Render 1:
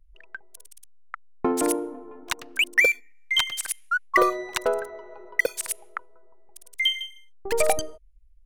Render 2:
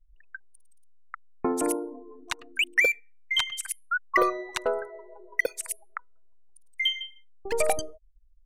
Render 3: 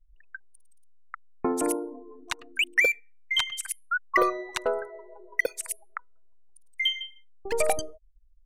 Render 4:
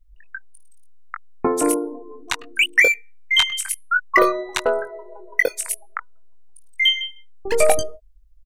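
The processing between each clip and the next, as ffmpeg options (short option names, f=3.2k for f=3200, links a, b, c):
-af "afftdn=nr=24:nf=-39,volume=-3dB"
-af anull
-filter_complex "[0:a]asplit=2[a][b];[b]adelay=21,volume=-6dB[c];[a][c]amix=inputs=2:normalize=0,volume=7dB"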